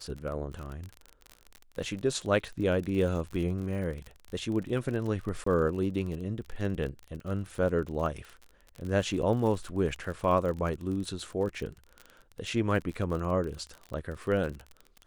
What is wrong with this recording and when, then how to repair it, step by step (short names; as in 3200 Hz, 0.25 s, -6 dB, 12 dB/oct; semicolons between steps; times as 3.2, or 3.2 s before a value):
crackle 41/s -35 dBFS
5.44–5.46 gap 24 ms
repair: de-click; interpolate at 5.44, 24 ms